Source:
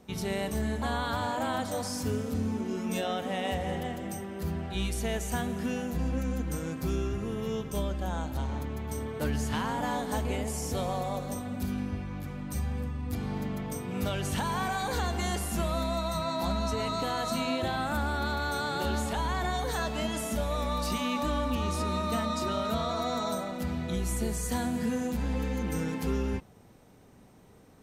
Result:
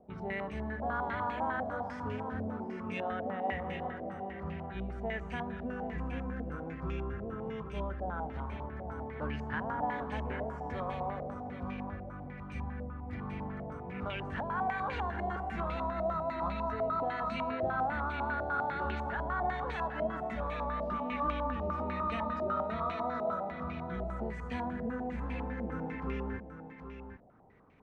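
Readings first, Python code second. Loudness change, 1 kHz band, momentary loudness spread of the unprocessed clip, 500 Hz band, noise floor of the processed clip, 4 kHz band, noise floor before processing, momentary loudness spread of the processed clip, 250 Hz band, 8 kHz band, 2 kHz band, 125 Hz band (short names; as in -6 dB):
-4.5 dB, -1.5 dB, 4 LU, -3.5 dB, -46 dBFS, -15.0 dB, -55 dBFS, 8 LU, -7.0 dB, under -30 dB, -2.5 dB, -7.5 dB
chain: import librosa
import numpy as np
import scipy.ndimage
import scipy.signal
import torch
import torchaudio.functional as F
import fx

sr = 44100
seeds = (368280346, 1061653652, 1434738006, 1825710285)

y = x + 10.0 ** (-9.5 / 20.0) * np.pad(x, (int(775 * sr / 1000.0), 0))[:len(x)]
y = fx.filter_held_lowpass(y, sr, hz=10.0, low_hz=670.0, high_hz=2400.0)
y = F.gain(torch.from_numpy(y), -8.0).numpy()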